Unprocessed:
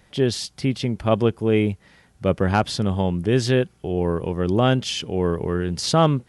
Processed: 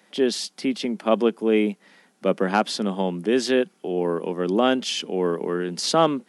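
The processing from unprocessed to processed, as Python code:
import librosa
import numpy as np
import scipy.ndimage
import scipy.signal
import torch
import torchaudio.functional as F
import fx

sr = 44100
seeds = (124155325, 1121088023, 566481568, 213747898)

y = scipy.signal.sosfilt(scipy.signal.butter(8, 190.0, 'highpass', fs=sr, output='sos'), x)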